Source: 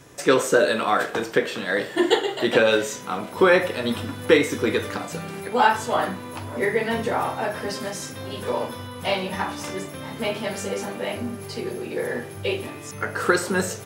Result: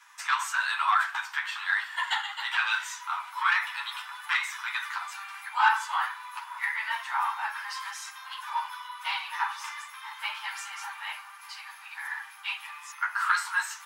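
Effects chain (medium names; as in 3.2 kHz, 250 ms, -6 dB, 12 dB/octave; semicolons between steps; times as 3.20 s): chorus voices 6, 1 Hz, delay 11 ms, depth 3.8 ms; saturation -13.5 dBFS, distortion -15 dB; steep high-pass 890 Hz 72 dB/octave; treble shelf 3.3 kHz -11 dB; trim +5 dB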